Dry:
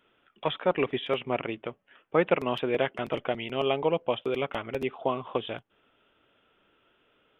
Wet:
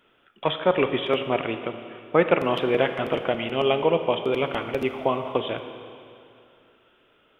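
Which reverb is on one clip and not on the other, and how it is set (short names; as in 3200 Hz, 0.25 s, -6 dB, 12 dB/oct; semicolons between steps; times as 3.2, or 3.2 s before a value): Schroeder reverb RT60 2.5 s, combs from 27 ms, DRR 7.5 dB; gain +4.5 dB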